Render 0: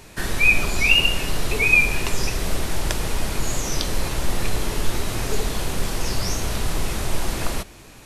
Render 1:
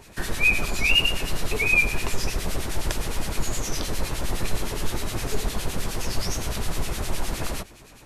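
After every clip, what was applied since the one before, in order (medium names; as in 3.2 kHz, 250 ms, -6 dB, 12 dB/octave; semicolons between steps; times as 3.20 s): harmonic tremolo 9.7 Hz, depth 70%, crossover 1.6 kHz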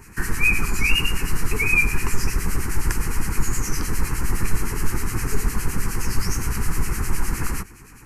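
static phaser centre 1.5 kHz, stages 4; trim +5.5 dB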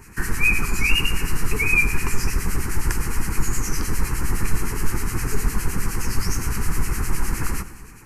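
reverberation RT60 1.5 s, pre-delay 63 ms, DRR 14 dB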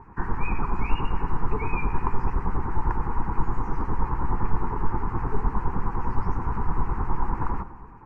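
resonant low-pass 930 Hz, resonance Q 4.1; trim -3 dB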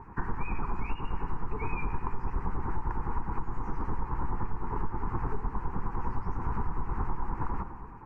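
compression, threshold -25 dBFS, peak gain reduction 13 dB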